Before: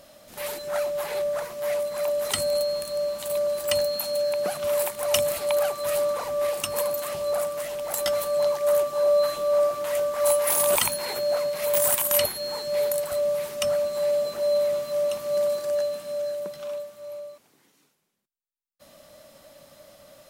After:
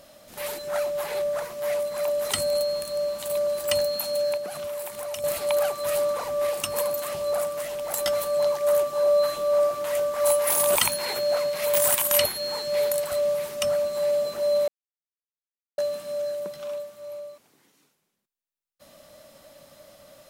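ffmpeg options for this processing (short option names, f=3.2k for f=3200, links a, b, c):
-filter_complex "[0:a]asettb=1/sr,asplit=3[a][b][c];[a]atrim=end=4.374[d];[b]atrim=start=4.37:end=5.24,asetpts=PTS-STARTPTS,afade=t=in:d=0.004:c=qsin,afade=t=out:st=0.866:d=0.004:c=qsin,acompressor=threshold=-30dB:ratio=6:attack=3.2:release=140:knee=1:detection=peak[e];[c]atrim=start=5.236[f];[d][e]acrossfade=d=0.004:c1=hsin:c2=qsin[g];[g][f]acrossfade=d=0.004:c1=qsin:c2=hsin,asettb=1/sr,asplit=3[h][i][j];[h]atrim=end=10.814[k];[i]atrim=start=10.81:end=13.34,asetpts=PTS-STARTPTS,afade=t=in:d=0.004:c=qsin,afade=t=out:st=2.526:d=0.004:c=qsin,equalizer=f=2.9k:t=o:w=2.6:g=3[l];[j]atrim=start=13.336[m];[k][l]acrossfade=d=0.004:c1=hsin:c2=qsin[n];[n][m]acrossfade=d=0.004:c1=qsin:c2=hsin,asplit=3[o][p][q];[o]atrim=end=14.68,asetpts=PTS-STARTPTS,afade=t=out:st=14.676:d=0.004:c=hsin[r];[p]atrim=start=14.68:end=15.78,asetpts=PTS-STARTPTS,volume=0[s];[q]atrim=start=15.78,asetpts=PTS-STARTPTS,afade=t=in:d=0.004:c=hsin[t];[r][s][t]concat=n=3:v=0:a=1"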